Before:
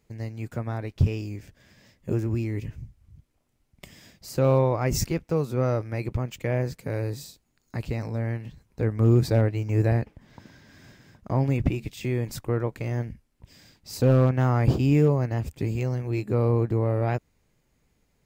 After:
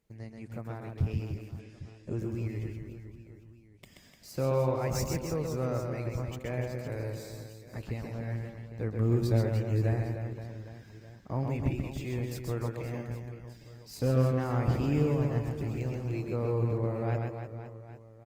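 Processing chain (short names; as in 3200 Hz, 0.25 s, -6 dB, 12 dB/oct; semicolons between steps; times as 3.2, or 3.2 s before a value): reverse bouncing-ball echo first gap 0.13 s, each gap 1.3×, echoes 5; gain -8.5 dB; Opus 24 kbps 48000 Hz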